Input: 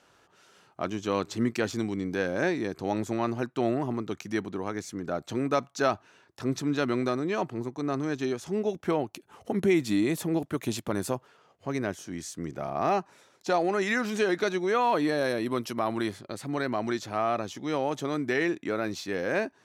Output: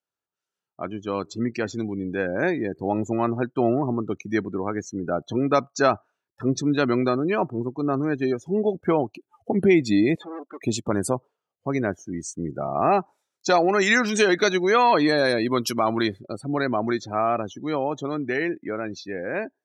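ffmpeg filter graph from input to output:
-filter_complex "[0:a]asettb=1/sr,asplit=3[s0][s1][s2];[s0]atrim=end=10.154[s3];[s1]atrim=start=10.15:end=10.62,asetpts=PTS-STARTPTS,afade=t=in:d=0.004:c=qsin,afade=t=out:st=0.466:d=0.004:c=qsin,equalizer=f=1100:t=o:w=0.31:g=4.5,volume=47.3,asoftclip=hard,volume=0.0211,highpass=430,lowpass=5200[s4];[s2]atrim=start=10.616[s5];[s3][s4]acrossfade=d=0.004:c1=hsin:c2=qsin[s6];[s6][s5]acrossfade=d=0.004:c1=qsin:c2=hsin,asettb=1/sr,asplit=3[s7][s8][s9];[s7]atrim=end=13.004[s10];[s8]atrim=start=13:end=16.08,asetpts=PTS-STARTPTS,afade=t=in:d=0.004:c=qsin,afade=t=out:st=3.076:d=0.004:c=qsin,highshelf=f=2100:g=6,asoftclip=type=hard:threshold=0.15[s11];[s9]atrim=start=16.076[s12];[s10][s11]acrossfade=d=0.004:c1=hsin:c2=qsin[s13];[s13][s12]acrossfade=d=0.004:c1=qsin:c2=hsin,afftdn=nr=32:nf=-38,highshelf=f=7900:g=11.5,dynaudnorm=f=440:g=11:m=2"

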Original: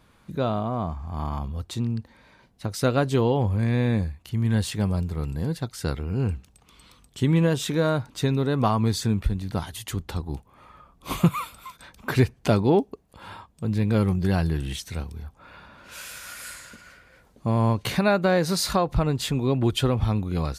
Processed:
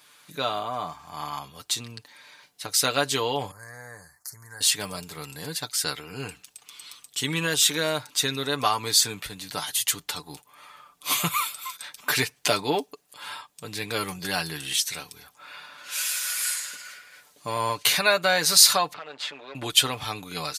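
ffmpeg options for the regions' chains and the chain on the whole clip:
-filter_complex "[0:a]asettb=1/sr,asplit=3[s0][s1][s2];[s0]atrim=end=3.514[s3];[s1]atrim=start=3.51:end=4.61,asetpts=PTS-STARTPTS,afade=t=in:d=0.004:c=qsin,afade=t=out:st=1.096:d=0.004:c=qsin,equalizer=f=270:w=0.83:g=-13.5,acompressor=threshold=0.0224:ratio=3:attack=3.2:release=140:knee=1:detection=peak,asuperstop=centerf=3000:order=8:qfactor=0.95[s4];[s2]atrim=start=4.606[s5];[s3][s4]acrossfade=d=0.004:c1=hsin:c2=qsin[s6];[s6][s5]acrossfade=d=0.004:c1=qsin:c2=hsin,asettb=1/sr,asplit=3[s7][s8][s9];[s7]atrim=end=18.934[s10];[s8]atrim=start=18.93:end=19.55,asetpts=PTS-STARTPTS,afade=t=in:d=0.004:c=qsin,afade=t=out:st=0.616:d=0.004:c=qsin,aeval=exprs='if(lt(val(0),0),0.251*val(0),val(0))':c=same,highpass=360,lowpass=2600,acompressor=threshold=0.0158:ratio=2.5:attack=3.2:release=140:knee=1:detection=peak[s11];[s9]atrim=start=19.546[s12];[s10][s11]acrossfade=d=0.004:c1=hsin:c2=qsin[s13];[s13][s12]acrossfade=d=0.004:c1=qsin:c2=hsin,highpass=f=1300:p=1,highshelf=f=2500:g=10.5,aecho=1:1:6.8:0.58,volume=1.41"

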